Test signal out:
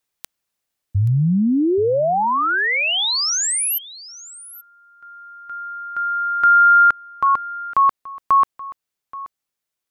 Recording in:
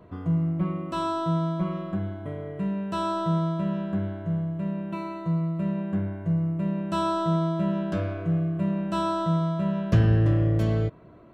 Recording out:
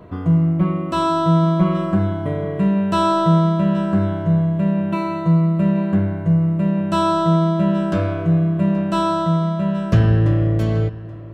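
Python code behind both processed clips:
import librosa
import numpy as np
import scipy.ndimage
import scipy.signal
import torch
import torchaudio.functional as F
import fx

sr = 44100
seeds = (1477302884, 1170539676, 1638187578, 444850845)

p1 = fx.rider(x, sr, range_db=10, speed_s=2.0)
p2 = p1 + fx.echo_single(p1, sr, ms=828, db=-18.0, dry=0)
y = p2 * 10.0 ** (8.0 / 20.0)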